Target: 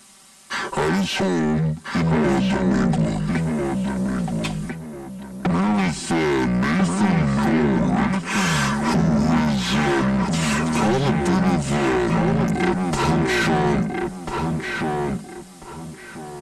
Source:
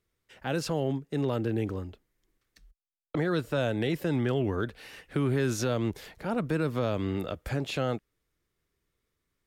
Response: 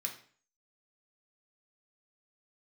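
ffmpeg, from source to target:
-filter_complex "[0:a]aemphasis=mode=production:type=75fm,deesser=0.7,equalizer=frequency=280:width_type=o:width=2.7:gain=6,aecho=1:1:3:0.96,acompressor=threshold=-32dB:ratio=4,asplit=2[link_01][link_02];[link_02]highpass=frequency=720:poles=1,volume=32dB,asoftclip=type=tanh:threshold=-12dB[link_03];[link_01][link_03]amix=inputs=2:normalize=0,lowpass=frequency=5300:poles=1,volume=-6dB,asplit=2[link_04][link_05];[link_05]adelay=775,lowpass=frequency=3800:poles=1,volume=-3dB,asplit=2[link_06][link_07];[link_07]adelay=775,lowpass=frequency=3800:poles=1,volume=0.28,asplit=2[link_08][link_09];[link_09]adelay=775,lowpass=frequency=3800:poles=1,volume=0.28,asplit=2[link_10][link_11];[link_11]adelay=775,lowpass=frequency=3800:poles=1,volume=0.28[link_12];[link_04][link_06][link_08][link_10][link_12]amix=inputs=5:normalize=0,asetrate=25442,aresample=44100"

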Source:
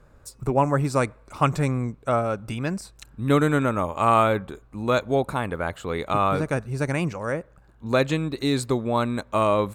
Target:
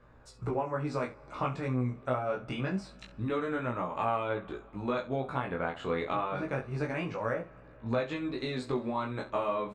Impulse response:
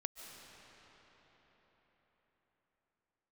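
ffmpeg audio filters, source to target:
-filter_complex "[0:a]lowpass=3500,lowshelf=frequency=170:gain=-7,acompressor=threshold=-28dB:ratio=6,flanger=delay=17:depth=6.8:speed=0.26,aecho=1:1:16|66:0.631|0.224,asplit=2[link_01][link_02];[1:a]atrim=start_sample=2205[link_03];[link_02][link_03]afir=irnorm=-1:irlink=0,volume=-15dB[link_04];[link_01][link_04]amix=inputs=2:normalize=0"

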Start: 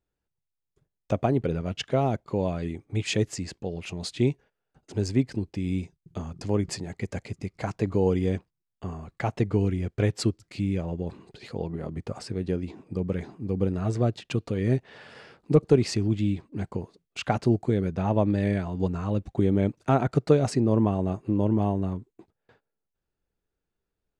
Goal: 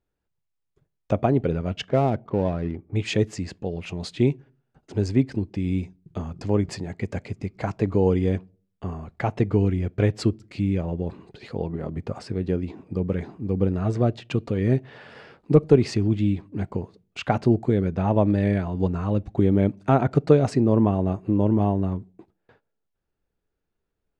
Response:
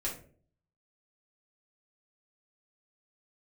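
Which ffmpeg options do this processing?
-filter_complex "[0:a]highshelf=frequency=5400:gain=-12,asettb=1/sr,asplit=3[link_01][link_02][link_03];[link_01]atrim=end=1.824[link_04];[link_02]atrim=start=1.82:end=2.96,asetpts=PTS-STARTPTS,afade=type=in:duration=0.004:curve=qsin,afade=type=out:start_time=1.136:duration=0.004:curve=qsin,adynamicsmooth=sensitivity=7:basefreq=1300[link_05];[link_03]atrim=start=2.956[link_06];[link_04][link_05]acrossfade=duration=0.004:curve1=hsin:curve2=qsin[link_07];[link_07][link_06]acrossfade=duration=0.004:curve1=qsin:curve2=hsin,asplit=2[link_08][link_09];[1:a]atrim=start_sample=2205,asetrate=57330,aresample=44100[link_10];[link_09][link_10]afir=irnorm=-1:irlink=0,volume=-23dB[link_11];[link_08][link_11]amix=inputs=2:normalize=0,volume=3dB"

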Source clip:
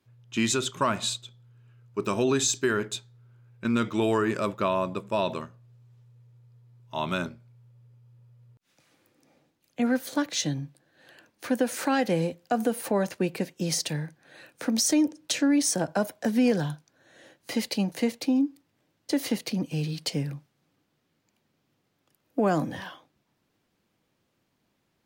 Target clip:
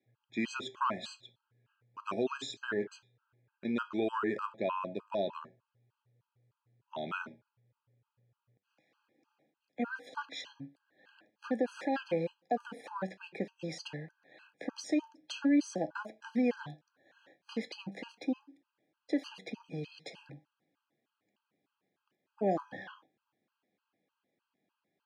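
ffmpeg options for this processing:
ffmpeg -i in.wav -af "highpass=220,lowpass=3200,flanger=delay=8.8:depth=2.4:regen=79:speed=0.43:shape=triangular,afftfilt=real='re*gt(sin(2*PI*3.3*pts/sr)*(1-2*mod(floor(b*sr/1024/820),2)),0)':imag='im*gt(sin(2*PI*3.3*pts/sr)*(1-2*mod(floor(b*sr/1024/820),2)),0)':win_size=1024:overlap=0.75" out.wav

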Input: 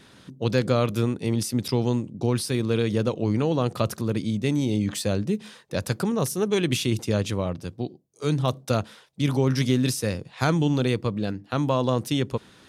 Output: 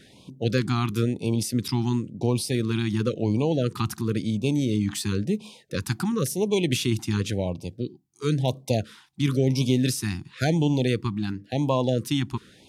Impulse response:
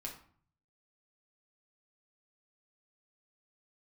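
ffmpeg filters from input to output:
-af "afftfilt=real='re*(1-between(b*sr/1024,490*pow(1600/490,0.5+0.5*sin(2*PI*0.96*pts/sr))/1.41,490*pow(1600/490,0.5+0.5*sin(2*PI*0.96*pts/sr))*1.41))':imag='im*(1-between(b*sr/1024,490*pow(1600/490,0.5+0.5*sin(2*PI*0.96*pts/sr))/1.41,490*pow(1600/490,0.5+0.5*sin(2*PI*0.96*pts/sr))*1.41))':win_size=1024:overlap=0.75"

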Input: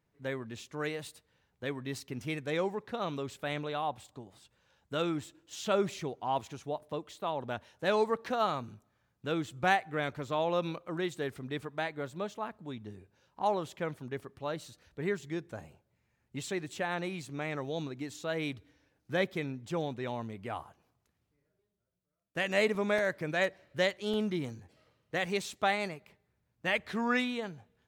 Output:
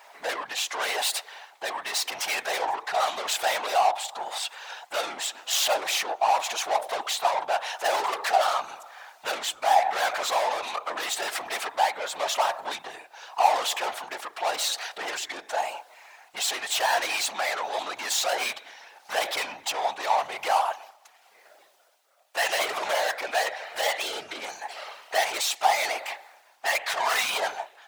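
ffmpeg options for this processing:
ffmpeg -i in.wav -filter_complex "[0:a]highshelf=frequency=6200:gain=-9.5,asplit=2[link_01][link_02];[link_02]acompressor=threshold=-40dB:ratio=10,volume=0dB[link_03];[link_01][link_03]amix=inputs=2:normalize=0,asoftclip=type=tanh:threshold=-30dB,tremolo=f=0.88:d=0.54,asplit=2[link_04][link_05];[link_05]highpass=frequency=720:poles=1,volume=28dB,asoftclip=type=tanh:threshold=-24.5dB[link_06];[link_04][link_06]amix=inputs=2:normalize=0,lowpass=frequency=2800:poles=1,volume=-6dB,highpass=frequency=750:width_type=q:width=4.9,afftfilt=real='hypot(re,im)*cos(2*PI*random(0))':imag='hypot(re,im)*sin(2*PI*random(1))':win_size=512:overlap=0.75,crystalizer=i=8:c=0,volume=3dB" out.wav

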